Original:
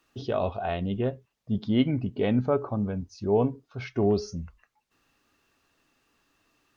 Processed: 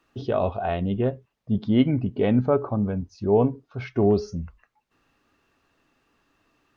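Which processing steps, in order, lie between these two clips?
high shelf 3700 Hz -10.5 dB; gain +4 dB

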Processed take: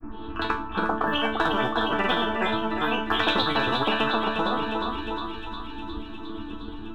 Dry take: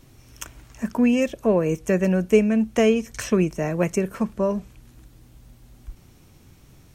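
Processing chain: half-wave gain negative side -3 dB; steep low-pass 2700 Hz 96 dB/oct; transient shaper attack +6 dB, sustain +1 dB; grains, pitch spread up and down by 7 st; fixed phaser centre 570 Hz, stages 6; resonator bank A3 sus4, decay 0.33 s; on a send: thinning echo 0.357 s, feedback 78%, high-pass 1100 Hz, level -9 dB; on the sum: maximiser +26.5 dB; spectral compressor 10:1; gain -6.5 dB

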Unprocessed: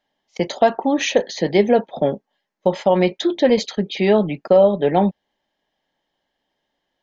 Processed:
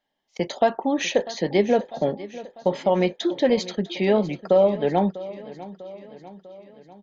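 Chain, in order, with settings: feedback echo 0.647 s, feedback 56%, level -17 dB; gain -4.5 dB

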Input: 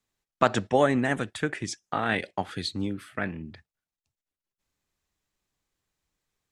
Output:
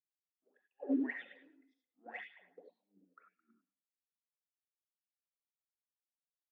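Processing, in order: per-bin expansion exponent 1.5; Chebyshev high-pass 180 Hz, order 10; tilt -3.5 dB/oct; de-hum 261.2 Hz, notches 3; compressor 8:1, threshold -31 dBFS, peak gain reduction 15.5 dB; auto swell 0.576 s; wah 1.9 Hz 260–3600 Hz, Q 18; short-mantissa float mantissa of 4-bit; air absorption 160 m; delay with a stepping band-pass 0.108 s, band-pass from 3000 Hz, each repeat -0.7 oct, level -7.5 dB; non-linear reverb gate 0.11 s rising, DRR 1.5 dB; three-band expander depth 100%; gain +10 dB

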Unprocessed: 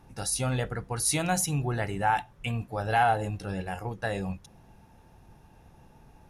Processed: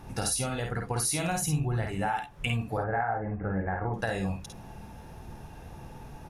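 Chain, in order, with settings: 1.31–1.88 low shelf 140 Hz +10.5 dB; 2.77–3.94 steep low-pass 2100 Hz 72 dB/oct; compressor 12:1, threshold -36 dBFS, peak gain reduction 17 dB; early reflections 52 ms -4.5 dB, 66 ms -9.5 dB; gain +8.5 dB

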